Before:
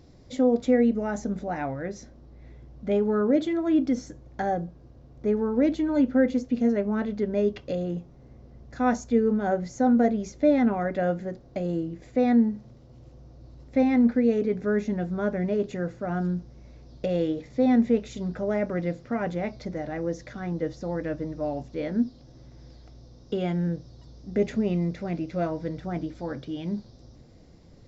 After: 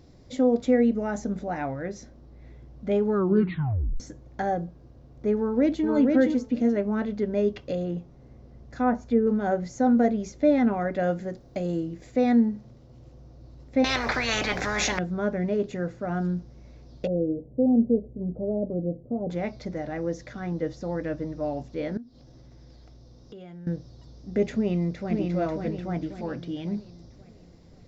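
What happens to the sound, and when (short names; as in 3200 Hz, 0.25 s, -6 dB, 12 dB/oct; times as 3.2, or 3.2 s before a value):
3.14 tape stop 0.86 s
5.36–5.87 echo throw 0.47 s, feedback 10%, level -2.5 dB
7.83–9.27 treble ducked by the level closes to 1500 Hz, closed at -19.5 dBFS
10.99–12.41 high shelf 5500 Hz +8.5 dB
13.84–14.99 spectral compressor 10:1
17.07–19.3 inverse Chebyshev low-pass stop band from 1600 Hz, stop band 50 dB
21.97–23.67 compressor 3:1, threshold -46 dBFS
24.55–25.16 echo throw 0.54 s, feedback 45%, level -3.5 dB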